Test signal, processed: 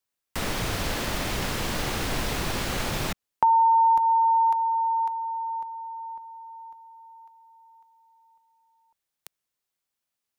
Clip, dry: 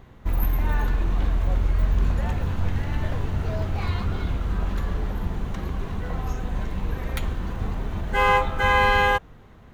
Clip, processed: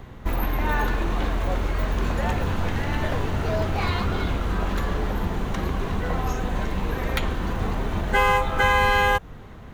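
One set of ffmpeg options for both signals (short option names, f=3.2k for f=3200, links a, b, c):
-filter_complex "[0:a]acrossover=split=220|5800[a][b][c];[a]acompressor=threshold=-31dB:ratio=4[d];[b]acompressor=threshold=-25dB:ratio=4[e];[c]acompressor=threshold=-46dB:ratio=4[f];[d][e][f]amix=inputs=3:normalize=0,volume=7dB"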